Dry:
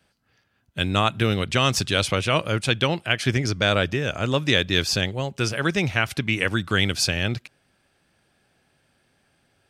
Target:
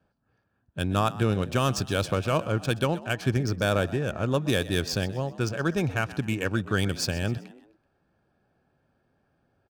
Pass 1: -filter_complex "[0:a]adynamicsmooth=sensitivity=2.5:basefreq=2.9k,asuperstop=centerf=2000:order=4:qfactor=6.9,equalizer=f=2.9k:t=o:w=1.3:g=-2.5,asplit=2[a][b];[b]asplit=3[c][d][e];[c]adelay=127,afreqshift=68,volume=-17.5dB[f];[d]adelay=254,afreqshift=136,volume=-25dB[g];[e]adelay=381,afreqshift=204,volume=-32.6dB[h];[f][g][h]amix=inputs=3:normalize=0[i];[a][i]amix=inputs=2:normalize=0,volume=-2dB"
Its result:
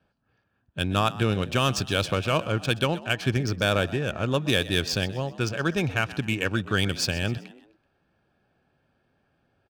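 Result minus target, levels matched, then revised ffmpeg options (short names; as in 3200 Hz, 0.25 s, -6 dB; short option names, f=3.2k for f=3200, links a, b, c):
4000 Hz band +4.0 dB
-filter_complex "[0:a]adynamicsmooth=sensitivity=2.5:basefreq=2.9k,asuperstop=centerf=2000:order=4:qfactor=6.9,equalizer=f=2.9k:t=o:w=1.3:g=-9.5,asplit=2[a][b];[b]asplit=3[c][d][e];[c]adelay=127,afreqshift=68,volume=-17.5dB[f];[d]adelay=254,afreqshift=136,volume=-25dB[g];[e]adelay=381,afreqshift=204,volume=-32.6dB[h];[f][g][h]amix=inputs=3:normalize=0[i];[a][i]amix=inputs=2:normalize=0,volume=-2dB"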